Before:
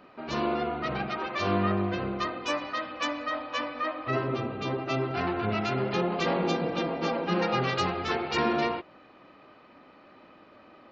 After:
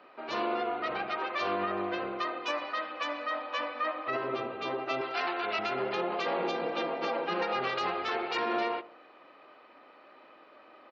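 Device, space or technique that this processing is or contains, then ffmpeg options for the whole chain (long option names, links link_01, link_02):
DJ mixer with the lows and highs turned down: -filter_complex "[0:a]acrossover=split=330 5100:gain=0.1 1 0.2[link_01][link_02][link_03];[link_01][link_02][link_03]amix=inputs=3:normalize=0,alimiter=limit=-21.5dB:level=0:latency=1:release=71,asettb=1/sr,asplit=3[link_04][link_05][link_06];[link_04]atrim=end=5.014[link_07];[link_05]atrim=start=5.01:end=5.59,asetpts=PTS-STARTPTS,afade=type=in:duration=0.004:curve=qsin,afade=type=out:start_time=0.576:duration=0.004:curve=qsin,aemphasis=mode=production:type=riaa[link_08];[link_06]atrim=start=5.586[link_09];[link_07][link_08]acrossfade=duration=0.004:curve1=hsin:curve2=qsin[link_10];[link_10][link_09]acrossfade=duration=0.004:curve1=qsin:curve2=hsin,asplit=2[link_11][link_12];[link_12]adelay=77,lowpass=frequency=930:poles=1,volume=-16dB,asplit=2[link_13][link_14];[link_14]adelay=77,lowpass=frequency=930:poles=1,volume=0.53,asplit=2[link_15][link_16];[link_16]adelay=77,lowpass=frequency=930:poles=1,volume=0.53,asplit=2[link_17][link_18];[link_18]adelay=77,lowpass=frequency=930:poles=1,volume=0.53,asplit=2[link_19][link_20];[link_20]adelay=77,lowpass=frequency=930:poles=1,volume=0.53[link_21];[link_11][link_13][link_15][link_17][link_19][link_21]amix=inputs=6:normalize=0"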